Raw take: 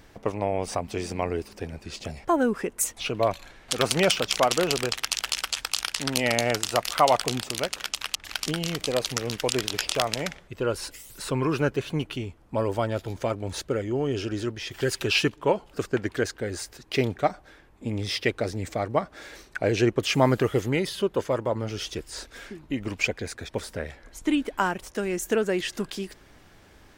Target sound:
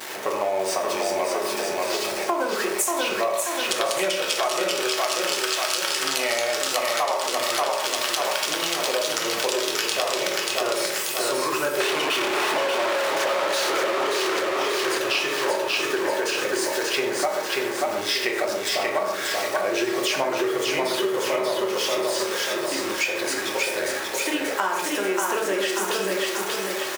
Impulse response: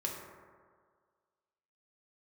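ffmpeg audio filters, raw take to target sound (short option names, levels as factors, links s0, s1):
-filter_complex "[0:a]aeval=exprs='val(0)+0.5*0.0282*sgn(val(0))':c=same[s0];[1:a]atrim=start_sample=2205,afade=t=out:st=0.21:d=0.01,atrim=end_sample=9702[s1];[s0][s1]afir=irnorm=-1:irlink=0,asettb=1/sr,asplit=3[s2][s3][s4];[s2]atrim=end=11.804[s5];[s3]atrim=start=11.8:end=14.4,asetpts=PTS-STARTPTS,afade=t=in:d=0.004:c=qsin,afade=t=out:st=2.596:d=0.004:c=qsin,asplit=2[s6][s7];[s7]highpass=f=720:p=1,volume=100,asoftclip=type=tanh:threshold=0.355[s8];[s6][s8]amix=inputs=2:normalize=0,lowpass=f=3000:p=1,volume=0.501[s9];[s4]atrim=start=14.396[s10];[s5][s9]acrossfade=d=0.004:c1=hsin:c2=qsin[s11];[s11][s10]acrossfade=d=0.004:c1=qsin:c2=hsin,highpass=550,aecho=1:1:585|1170|1755|2340|2925|3510:0.668|0.314|0.148|0.0694|0.0326|0.0153,acompressor=threshold=0.0562:ratio=10,volume=1.78"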